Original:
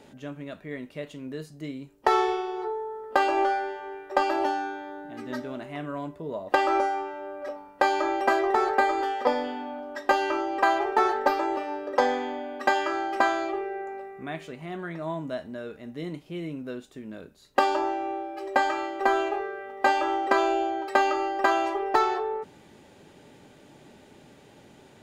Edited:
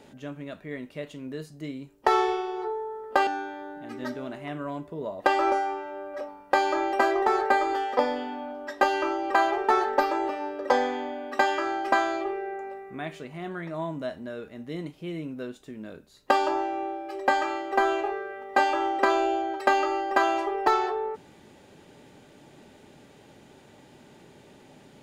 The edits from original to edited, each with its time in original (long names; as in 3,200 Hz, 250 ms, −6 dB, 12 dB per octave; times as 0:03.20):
0:03.27–0:04.55: remove